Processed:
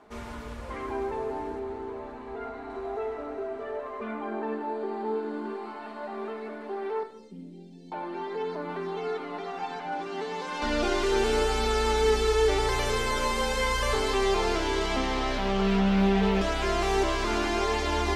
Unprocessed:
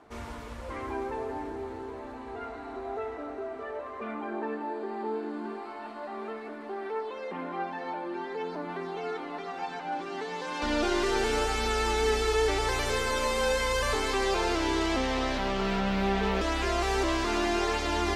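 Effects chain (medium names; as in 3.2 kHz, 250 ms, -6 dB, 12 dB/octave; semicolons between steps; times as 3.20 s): 1.59–2.70 s: treble shelf 4.3 kHz -6.5 dB; 7.03–7.92 s: Chebyshev band-stop 210–6400 Hz, order 2; reverberation RT60 0.85 s, pre-delay 5 ms, DRR 6.5 dB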